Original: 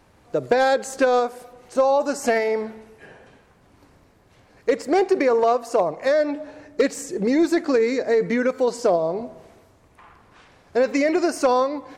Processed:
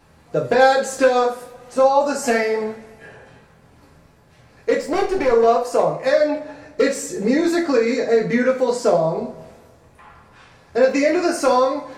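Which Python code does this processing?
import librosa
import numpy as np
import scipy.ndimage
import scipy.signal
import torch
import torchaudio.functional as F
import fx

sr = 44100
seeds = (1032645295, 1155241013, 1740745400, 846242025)

y = fx.halfwave_gain(x, sr, db=-7.0, at=(4.8, 5.29))
y = fx.rev_double_slope(y, sr, seeds[0], early_s=0.35, late_s=2.1, knee_db=-27, drr_db=-3.0)
y = y * librosa.db_to_amplitude(-1.0)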